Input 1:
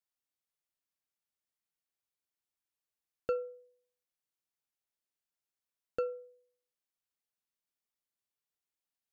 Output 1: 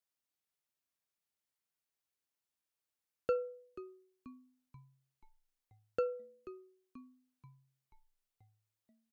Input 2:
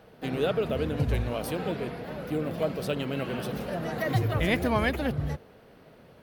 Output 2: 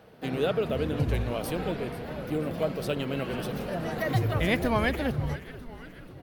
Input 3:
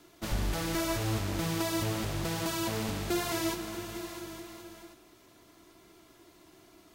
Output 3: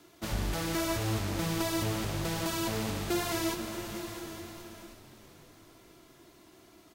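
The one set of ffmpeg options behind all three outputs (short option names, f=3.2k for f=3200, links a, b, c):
-filter_complex "[0:a]highpass=41,asplit=2[a][b];[b]asplit=6[c][d][e][f][g][h];[c]adelay=484,afreqshift=-120,volume=-15.5dB[i];[d]adelay=968,afreqshift=-240,volume=-20.2dB[j];[e]adelay=1452,afreqshift=-360,volume=-25dB[k];[f]adelay=1936,afreqshift=-480,volume=-29.7dB[l];[g]adelay=2420,afreqshift=-600,volume=-34.4dB[m];[h]adelay=2904,afreqshift=-720,volume=-39.2dB[n];[i][j][k][l][m][n]amix=inputs=6:normalize=0[o];[a][o]amix=inputs=2:normalize=0"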